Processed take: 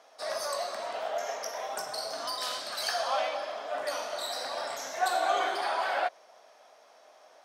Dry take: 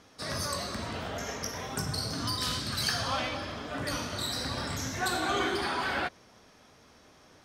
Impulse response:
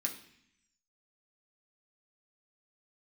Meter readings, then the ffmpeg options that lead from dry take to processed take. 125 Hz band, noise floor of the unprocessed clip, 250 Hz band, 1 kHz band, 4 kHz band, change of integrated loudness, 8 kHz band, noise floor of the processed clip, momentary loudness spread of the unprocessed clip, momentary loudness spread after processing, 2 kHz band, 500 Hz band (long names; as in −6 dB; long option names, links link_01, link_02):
below −30 dB, −58 dBFS, −15.0 dB, +4.0 dB, −3.0 dB, 0.0 dB, −3.0 dB, −58 dBFS, 7 LU, 7 LU, −1.5 dB, +4.5 dB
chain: -af "highpass=frequency=650:width_type=q:width=4.1,volume=-3dB"